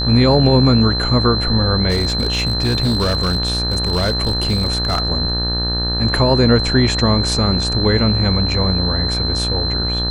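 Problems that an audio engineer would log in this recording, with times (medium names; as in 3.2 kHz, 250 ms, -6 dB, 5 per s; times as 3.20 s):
buzz 60 Hz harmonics 31 -22 dBFS
whine 4.1 kHz -20 dBFS
1.89–5.02 s: clipped -12.5 dBFS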